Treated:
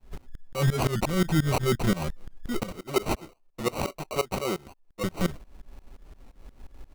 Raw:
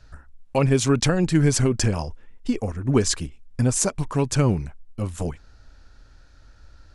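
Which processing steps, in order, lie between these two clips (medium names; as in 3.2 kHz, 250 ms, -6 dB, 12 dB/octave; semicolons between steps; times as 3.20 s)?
2.71–5.04 s: three-band isolator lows -23 dB, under 360 Hz, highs -13 dB, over 5.1 kHz; comb 5.5 ms, depth 96%; dynamic bell 800 Hz, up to -6 dB, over -43 dBFS, Q 3.2; peak limiter -14.5 dBFS, peak gain reduction 10 dB; saturation -15 dBFS, distortion -21 dB; tremolo saw up 5.7 Hz, depth 95%; sample-rate reducer 1.7 kHz, jitter 0%; warped record 45 rpm, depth 100 cents; trim +3.5 dB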